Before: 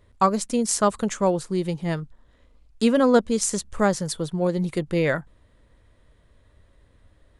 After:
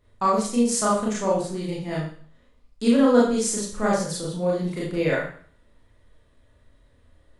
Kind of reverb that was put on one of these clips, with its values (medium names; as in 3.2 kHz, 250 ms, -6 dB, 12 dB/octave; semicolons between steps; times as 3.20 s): Schroeder reverb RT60 0.49 s, combs from 26 ms, DRR -6 dB; trim -7.5 dB